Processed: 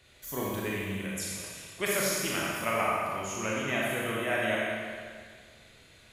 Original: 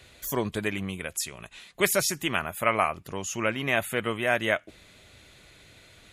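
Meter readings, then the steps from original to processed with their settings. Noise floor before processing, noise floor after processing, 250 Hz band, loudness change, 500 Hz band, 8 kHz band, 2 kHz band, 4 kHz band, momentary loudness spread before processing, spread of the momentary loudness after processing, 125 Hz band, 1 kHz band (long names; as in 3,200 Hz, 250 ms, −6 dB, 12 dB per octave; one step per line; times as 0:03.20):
−55 dBFS, −57 dBFS, −2.0 dB, −3.5 dB, −3.0 dB, −2.5 dB, −3.0 dB, −3.0 dB, 9 LU, 11 LU, −2.5 dB, −3.0 dB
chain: four-comb reverb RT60 1.9 s, combs from 28 ms, DRR −5 dB
level −9 dB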